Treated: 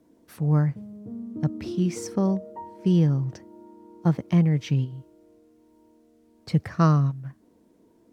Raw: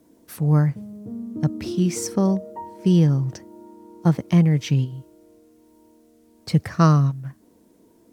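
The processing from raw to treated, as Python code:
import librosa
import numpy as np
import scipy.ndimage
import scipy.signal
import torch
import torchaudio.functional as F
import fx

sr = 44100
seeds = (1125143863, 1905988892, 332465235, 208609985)

y = fx.high_shelf(x, sr, hz=5700.0, db=-9.5)
y = F.gain(torch.from_numpy(y), -3.5).numpy()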